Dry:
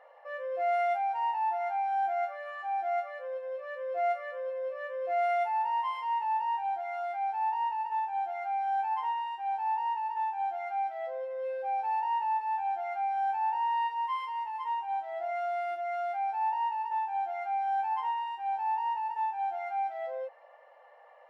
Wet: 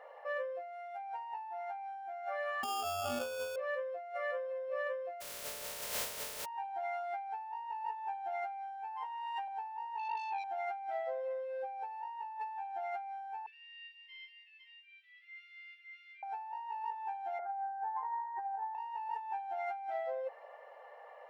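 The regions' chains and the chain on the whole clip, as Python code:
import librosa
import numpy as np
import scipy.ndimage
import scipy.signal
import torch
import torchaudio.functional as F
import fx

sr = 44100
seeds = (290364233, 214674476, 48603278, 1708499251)

y = fx.chain(x, sr, fx.over_compress(threshold_db=-36.0, ratio=-1.0),
    fx.sample_hold(seeds[0], rate_hz=2000.0, jitter_pct=0), at=(2.63, 3.56))
y = fx.spec_flatten(y, sr, power=0.1, at=(5.2, 6.44), fade=0.02)
y = fx.peak_eq(y, sr, hz=590.0, db=13.0, octaves=0.25, at=(5.2, 6.44), fade=0.02)
y = fx.notch(y, sr, hz=340.0, q=5.9, at=(5.2, 6.44), fade=0.02)
y = fx.chain(y, sr, fx.highpass(hz=630.0, slope=12),
    fx.env_flatten(amount_pct=50), at=(9.05, 9.48))
y = fx.chain(y, sr, fx.lowpass(hz=2300.0, slope=12),
    fx.transformer_sat(knee_hz=1700.0), at=(9.98, 10.44))
y = fx.chain(y, sr, fx.steep_highpass(hz=2200.0, slope=48),
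    fx.air_absorb(metres=320.0), at=(13.46, 16.23))
y = fx.chain(y, sr, fx.low_shelf(hz=350.0, db=5.0),
    fx.over_compress(threshold_db=-35.0, ratio=-0.5),
    fx.steep_lowpass(hz=1900.0, slope=72), at=(17.39, 18.75))
y = fx.peak_eq(y, sr, hz=430.0, db=8.0, octaves=0.21)
y = fx.over_compress(y, sr, threshold_db=-38.0, ratio=-1.0)
y = y * librosa.db_to_amplitude(-2.5)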